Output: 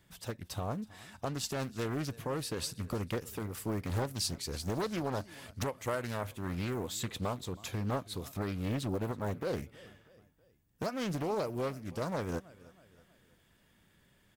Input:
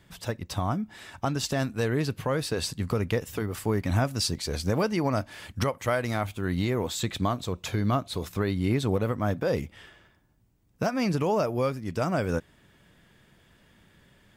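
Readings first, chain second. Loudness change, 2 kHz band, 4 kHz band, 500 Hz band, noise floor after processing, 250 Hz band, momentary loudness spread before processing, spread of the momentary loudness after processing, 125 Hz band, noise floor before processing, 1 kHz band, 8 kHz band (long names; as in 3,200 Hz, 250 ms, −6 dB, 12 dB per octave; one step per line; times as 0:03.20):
−8.0 dB, −9.0 dB, −6.5 dB, −8.5 dB, −68 dBFS, −8.5 dB, 6 LU, 7 LU, −8.5 dB, −62 dBFS, −8.0 dB, −4.5 dB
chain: high-shelf EQ 8,500 Hz +11 dB
on a send: repeating echo 321 ms, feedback 47%, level −21 dB
on the sum: highs frequency-modulated by the lows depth 0.73 ms
level −8.5 dB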